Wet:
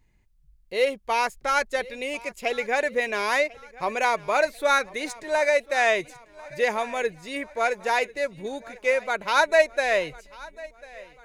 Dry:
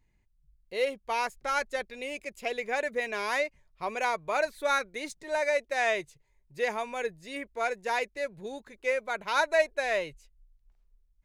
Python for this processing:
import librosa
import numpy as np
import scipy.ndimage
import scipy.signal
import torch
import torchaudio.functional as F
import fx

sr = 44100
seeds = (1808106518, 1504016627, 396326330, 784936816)

y = fx.echo_feedback(x, sr, ms=1045, feedback_pct=51, wet_db=-21)
y = y * 10.0 ** (6.0 / 20.0)